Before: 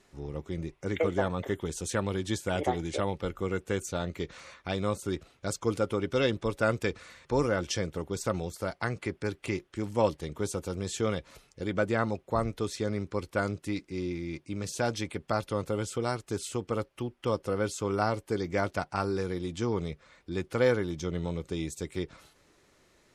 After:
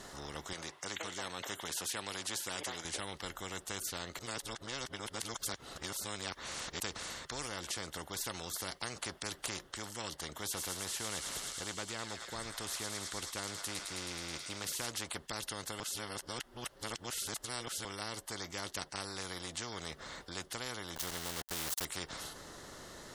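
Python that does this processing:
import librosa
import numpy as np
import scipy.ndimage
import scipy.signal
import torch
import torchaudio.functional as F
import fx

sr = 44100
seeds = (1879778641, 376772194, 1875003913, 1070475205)

y = fx.weighting(x, sr, curve='A', at=(0.53, 2.85))
y = fx.echo_wet_highpass(y, sr, ms=107, feedback_pct=81, hz=2800.0, wet_db=-8.5, at=(10.52, 14.85), fade=0.02)
y = fx.sample_gate(y, sr, floor_db=-38.5, at=(20.96, 21.85))
y = fx.edit(y, sr, fx.reverse_span(start_s=4.19, length_s=2.61),
    fx.reverse_span(start_s=15.8, length_s=2.05), tone=tone)
y = fx.peak_eq(y, sr, hz=2400.0, db=-14.5, octaves=0.28)
y = fx.rider(y, sr, range_db=5, speed_s=0.5)
y = fx.spectral_comp(y, sr, ratio=4.0)
y = F.gain(torch.from_numpy(y), -4.5).numpy()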